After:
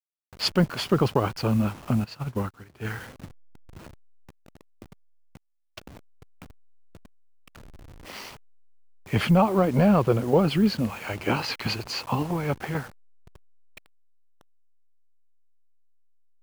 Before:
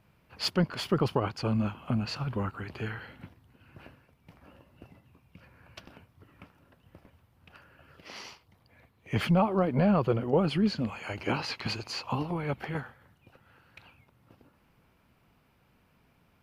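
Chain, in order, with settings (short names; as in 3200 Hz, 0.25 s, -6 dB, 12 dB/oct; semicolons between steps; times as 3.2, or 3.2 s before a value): level-crossing sampler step -44.5 dBFS; 2.04–2.85 upward expander 2.5:1, over -39 dBFS; gain +5 dB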